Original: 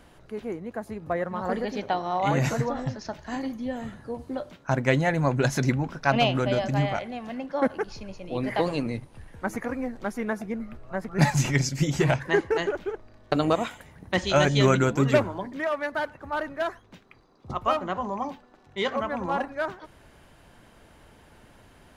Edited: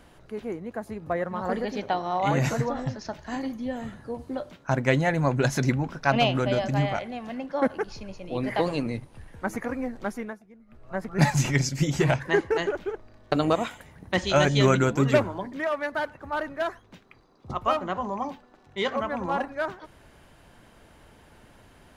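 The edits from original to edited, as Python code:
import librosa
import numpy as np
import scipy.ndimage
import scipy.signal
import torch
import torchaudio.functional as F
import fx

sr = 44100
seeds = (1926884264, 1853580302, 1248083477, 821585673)

y = fx.edit(x, sr, fx.fade_down_up(start_s=10.1, length_s=0.86, db=-20.5, fade_s=0.3), tone=tone)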